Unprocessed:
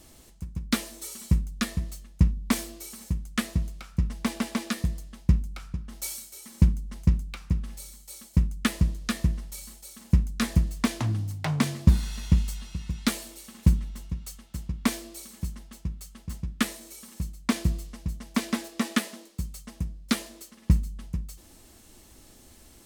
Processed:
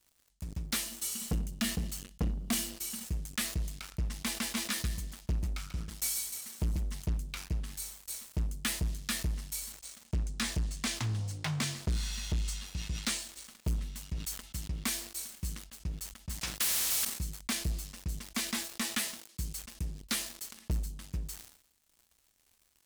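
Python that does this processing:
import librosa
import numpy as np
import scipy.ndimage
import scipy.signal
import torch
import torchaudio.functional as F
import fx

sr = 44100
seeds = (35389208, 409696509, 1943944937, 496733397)

y = fx.small_body(x, sr, hz=(210.0, 2900.0), ring_ms=25, db=12, at=(0.86, 3.05))
y = fx.echo_multitap(y, sr, ms=(139, 143), db=(-8.5, -17.5), at=(4.42, 6.99), fade=0.02)
y = fx.savgol(y, sr, points=9, at=(9.72, 13.66))
y = fx.spectral_comp(y, sr, ratio=4.0, at=(16.41, 17.05))
y = fx.tone_stack(y, sr, knobs='5-5-5')
y = fx.leveller(y, sr, passes=5)
y = fx.sustainer(y, sr, db_per_s=90.0)
y = y * 10.0 ** (-8.5 / 20.0)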